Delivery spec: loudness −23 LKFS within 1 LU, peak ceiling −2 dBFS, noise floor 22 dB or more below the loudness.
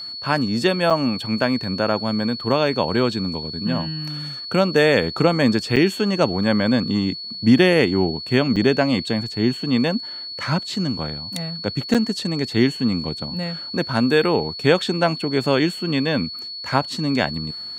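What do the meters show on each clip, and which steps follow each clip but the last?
number of dropouts 4; longest dropout 6.7 ms; interfering tone 4,400 Hz; level of the tone −30 dBFS; integrated loudness −20.5 LKFS; sample peak −2.5 dBFS; target loudness −23.0 LKFS
→ repair the gap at 0:00.90/0:05.76/0:08.56/0:11.94, 6.7 ms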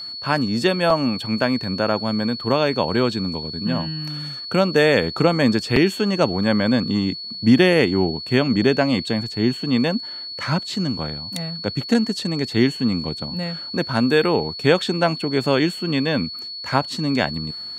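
number of dropouts 0; interfering tone 4,400 Hz; level of the tone −30 dBFS
→ notch filter 4,400 Hz, Q 30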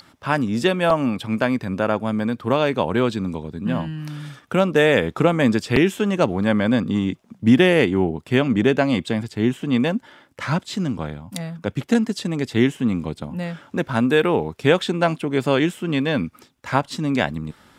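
interfering tone none found; integrated loudness −21.0 LKFS; sample peak −2.5 dBFS; target loudness −23.0 LKFS
→ level −2 dB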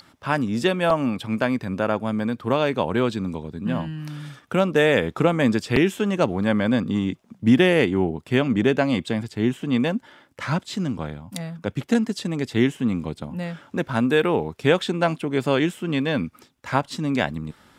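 integrated loudness −23.0 LKFS; sample peak −4.5 dBFS; background noise floor −57 dBFS

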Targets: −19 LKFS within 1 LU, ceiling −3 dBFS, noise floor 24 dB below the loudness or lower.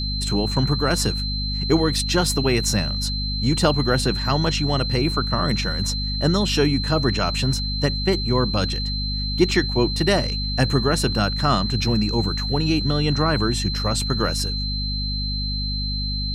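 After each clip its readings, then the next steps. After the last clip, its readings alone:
mains hum 50 Hz; hum harmonics up to 250 Hz; level of the hum −24 dBFS; interfering tone 4,100 Hz; level of the tone −27 dBFS; integrated loudness −21.5 LKFS; sample peak −5.0 dBFS; target loudness −19.0 LKFS
→ mains-hum notches 50/100/150/200/250 Hz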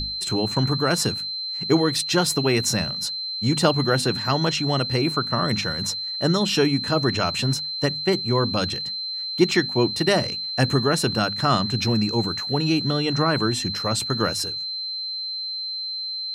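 mains hum none found; interfering tone 4,100 Hz; level of the tone −27 dBFS
→ notch filter 4,100 Hz, Q 30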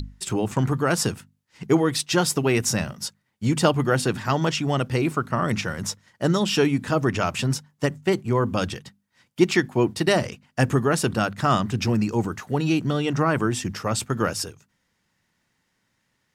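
interfering tone none found; integrated loudness −23.5 LKFS; sample peak −5.5 dBFS; target loudness −19.0 LKFS
→ level +4.5 dB
brickwall limiter −3 dBFS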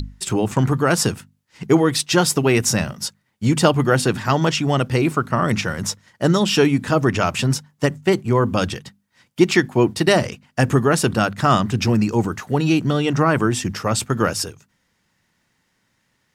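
integrated loudness −19.0 LKFS; sample peak −3.0 dBFS; background noise floor −68 dBFS

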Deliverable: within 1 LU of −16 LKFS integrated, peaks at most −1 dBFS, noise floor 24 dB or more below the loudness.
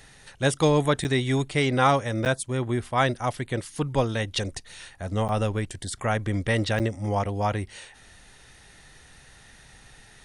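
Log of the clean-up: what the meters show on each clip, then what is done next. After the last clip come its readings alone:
number of dropouts 4; longest dropout 8.9 ms; integrated loudness −25.5 LKFS; sample peak −8.0 dBFS; target loudness −16.0 LKFS
→ repair the gap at 0:01.04/0:02.25/0:05.28/0:06.79, 8.9 ms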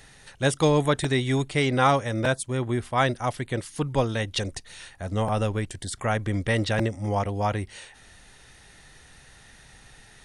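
number of dropouts 0; integrated loudness −25.5 LKFS; sample peak −8.0 dBFS; target loudness −16.0 LKFS
→ level +9.5 dB
brickwall limiter −1 dBFS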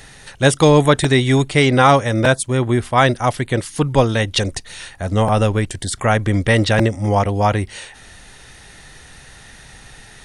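integrated loudness −16.5 LKFS; sample peak −1.0 dBFS; background noise floor −43 dBFS

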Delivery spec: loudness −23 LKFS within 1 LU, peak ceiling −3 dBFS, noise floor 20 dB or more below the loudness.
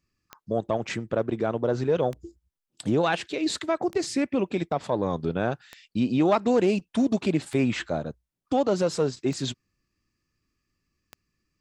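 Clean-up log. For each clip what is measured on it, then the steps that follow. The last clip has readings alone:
number of clicks 7; integrated loudness −26.5 LKFS; sample peak −11.0 dBFS; target loudness −23.0 LKFS
→ click removal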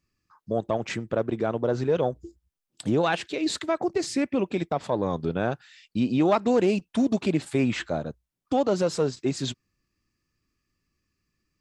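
number of clicks 0; integrated loudness −26.5 LKFS; sample peak −11.0 dBFS; target loudness −23.0 LKFS
→ level +3.5 dB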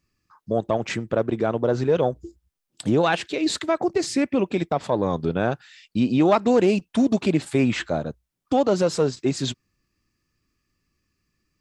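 integrated loudness −23.0 LKFS; sample peak −7.5 dBFS; background noise floor −79 dBFS

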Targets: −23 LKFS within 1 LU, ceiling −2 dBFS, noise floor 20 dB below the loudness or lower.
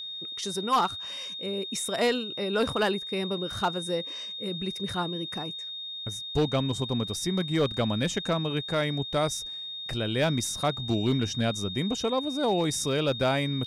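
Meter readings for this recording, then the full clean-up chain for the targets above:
share of clipped samples 0.4%; peaks flattened at −17.5 dBFS; interfering tone 3,700 Hz; level of the tone −35 dBFS; integrated loudness −28.5 LKFS; sample peak −17.5 dBFS; target loudness −23.0 LKFS
→ clipped peaks rebuilt −17.5 dBFS
notch filter 3,700 Hz, Q 30
level +5.5 dB

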